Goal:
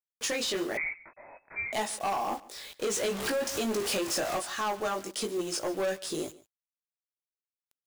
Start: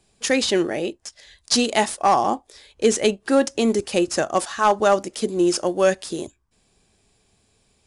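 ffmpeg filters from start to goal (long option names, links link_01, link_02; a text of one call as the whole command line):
ffmpeg -i in.wav -filter_complex "[0:a]asettb=1/sr,asplit=3[link_01][link_02][link_03];[link_01]atrim=end=2.874[link_04];[link_02]atrim=start=2.87:end=4.38,asetpts=PTS-STARTPTS,afade=type=in:duration=0.004:curve=qsin,afade=type=out:start_time=1.506:duration=0.004:curve=qsin,aeval=exprs='val(0)+0.5*0.0794*sgn(val(0))':channel_layout=same[link_05];[link_03]atrim=start=4.376[link_06];[link_04][link_05]acrossfade=duration=0.004:curve1=hsin:curve2=qsin[link_07];[link_07][link_06]acrossfade=duration=0.004:curve1=qsin:curve2=hsin,lowshelf=frequency=230:gain=-10,acompressor=threshold=-31dB:ratio=3,flanger=delay=18.5:depth=2.6:speed=1.1,acrusher=bits=5:mode=log:mix=0:aa=0.000001,asoftclip=type=tanh:threshold=-32dB,acrusher=bits=8:mix=0:aa=0.000001,aecho=1:1:142:0.0944,asettb=1/sr,asplit=3[link_08][link_09][link_10];[link_08]atrim=end=0.774[link_11];[link_09]atrim=start=0.77:end=1.73,asetpts=PTS-STARTPTS,afade=type=in:duration=0.004:curve=qsin,afade=type=out:start_time=0.956:duration=0.004:curve=qsin,lowpass=frequency=2200:width_type=q:width=0.5098,lowpass=frequency=2200:width_type=q:width=0.6013,lowpass=frequency=2200:width_type=q:width=0.9,lowpass=frequency=2200:width_type=q:width=2.563,afreqshift=-2600[link_12];[link_10]atrim=start=1.726[link_13];[link_11][link_12]acrossfade=duration=0.004:curve1=hsin:curve2=qsin[link_14];[link_14][link_13]acrossfade=duration=0.004:curve1=qsin:curve2=hsin,volume=6.5dB" out.wav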